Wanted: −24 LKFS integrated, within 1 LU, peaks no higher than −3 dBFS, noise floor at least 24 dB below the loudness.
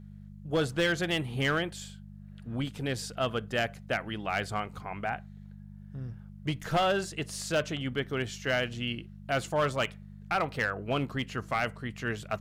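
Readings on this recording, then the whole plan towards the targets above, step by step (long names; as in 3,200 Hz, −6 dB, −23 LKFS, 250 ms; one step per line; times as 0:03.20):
share of clipped samples 0.7%; peaks flattened at −21.0 dBFS; mains hum 50 Hz; hum harmonics up to 200 Hz; level of the hum −45 dBFS; integrated loudness −31.5 LKFS; sample peak −21.0 dBFS; target loudness −24.0 LKFS
→ clipped peaks rebuilt −21 dBFS
hum removal 50 Hz, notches 4
level +7.5 dB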